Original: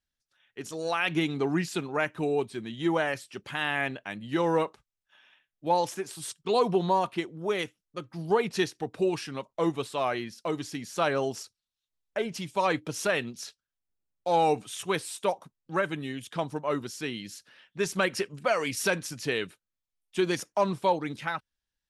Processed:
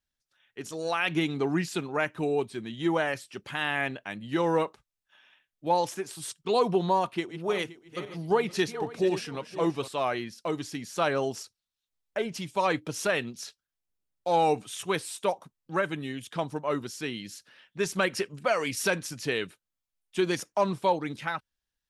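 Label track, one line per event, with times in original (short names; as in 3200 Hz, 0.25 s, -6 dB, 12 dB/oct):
7.010000	9.880000	regenerating reverse delay 0.261 s, feedback 45%, level -11 dB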